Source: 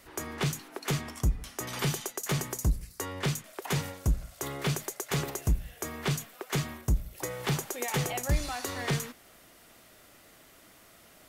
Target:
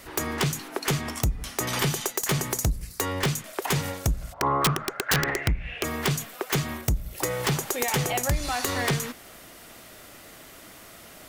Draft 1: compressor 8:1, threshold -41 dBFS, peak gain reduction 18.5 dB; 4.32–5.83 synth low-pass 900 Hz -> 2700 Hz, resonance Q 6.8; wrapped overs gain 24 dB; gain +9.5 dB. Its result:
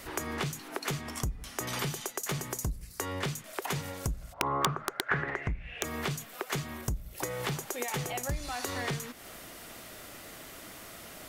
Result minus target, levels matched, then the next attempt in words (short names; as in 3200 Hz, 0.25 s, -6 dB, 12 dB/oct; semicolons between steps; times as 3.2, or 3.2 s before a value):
compressor: peak gain reduction +8.5 dB
compressor 8:1, threshold -31 dBFS, peak gain reduction 9.5 dB; 4.32–5.83 synth low-pass 900 Hz -> 2700 Hz, resonance Q 6.8; wrapped overs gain 24 dB; gain +9.5 dB